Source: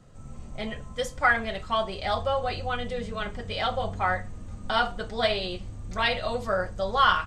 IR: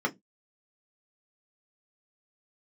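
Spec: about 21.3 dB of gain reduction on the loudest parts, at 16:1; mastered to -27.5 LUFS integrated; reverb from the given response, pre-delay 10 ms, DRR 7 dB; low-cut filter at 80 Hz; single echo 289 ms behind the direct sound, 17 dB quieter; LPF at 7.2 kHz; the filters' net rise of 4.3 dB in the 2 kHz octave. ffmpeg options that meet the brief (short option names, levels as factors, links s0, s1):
-filter_complex "[0:a]highpass=80,lowpass=7200,equalizer=f=2000:t=o:g=6,acompressor=threshold=0.0178:ratio=16,aecho=1:1:289:0.141,asplit=2[s0][s1];[1:a]atrim=start_sample=2205,adelay=10[s2];[s1][s2]afir=irnorm=-1:irlink=0,volume=0.158[s3];[s0][s3]amix=inputs=2:normalize=0,volume=3.55"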